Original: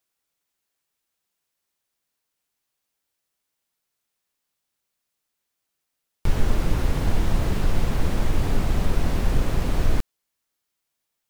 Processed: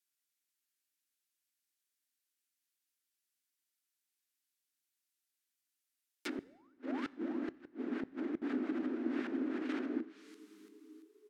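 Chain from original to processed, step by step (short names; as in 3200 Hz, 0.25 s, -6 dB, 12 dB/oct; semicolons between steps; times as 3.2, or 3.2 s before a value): band shelf 680 Hz -15.5 dB; 6.38–6.74 painted sound rise 330–1600 Hz -31 dBFS; frequency-shifting echo 0.339 s, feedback 45%, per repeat -110 Hz, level -15.5 dB; gate -21 dBFS, range -11 dB; treble ducked by the level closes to 640 Hz, closed at -14.5 dBFS; Chebyshev high-pass 250 Hz, order 6; high shelf 4200 Hz +6 dB; 6.26–8.42 flipped gate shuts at -29 dBFS, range -35 dB; reverb RT60 1.1 s, pre-delay 4 ms, DRR 18 dB; gain +1.5 dB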